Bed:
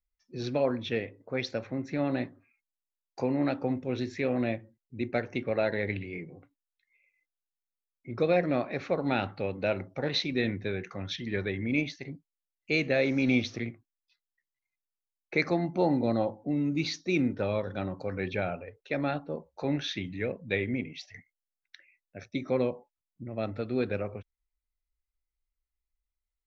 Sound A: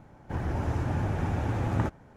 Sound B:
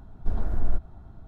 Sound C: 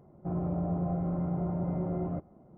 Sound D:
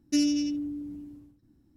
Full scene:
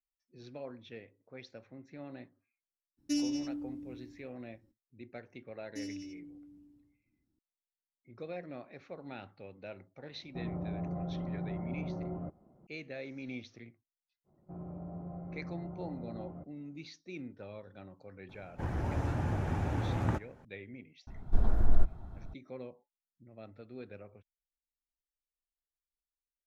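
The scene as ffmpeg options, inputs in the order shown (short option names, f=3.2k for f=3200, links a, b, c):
-filter_complex "[4:a]asplit=2[a][b];[3:a]asplit=2[c][d];[0:a]volume=-17dB[e];[a]atrim=end=1.76,asetpts=PTS-STARTPTS,volume=-7.5dB,afade=t=in:d=0.02,afade=t=out:st=1.74:d=0.02,adelay=2970[f];[b]atrim=end=1.76,asetpts=PTS-STARTPTS,volume=-17dB,afade=t=in:d=0.004:c=hsin,afade=t=out:st=1.756:d=0.004:c=hsin,adelay=5630[g];[c]atrim=end=2.57,asetpts=PTS-STARTPTS,volume=-6.5dB,afade=t=in:d=0.004:c=hsin,afade=t=out:st=2.566:d=0.004:c=hsin,adelay=445410S[h];[d]atrim=end=2.57,asetpts=PTS-STARTPTS,volume=-12.5dB,afade=t=in:d=0.05,afade=t=out:st=2.52:d=0.05,adelay=14240[i];[1:a]atrim=end=2.16,asetpts=PTS-STARTPTS,volume=-4dB,afade=t=in:d=0.004:c=hsin,afade=t=out:st=2.156:d=0.004:c=hsin,adelay=18290[j];[2:a]atrim=end=1.27,asetpts=PTS-STARTPTS,volume=-0.5dB,afade=t=in:d=0.004:c=hsin,afade=t=out:st=1.266:d=0.004:c=hsin,adelay=21070[k];[e][f][g][h][i][j][k]amix=inputs=7:normalize=0"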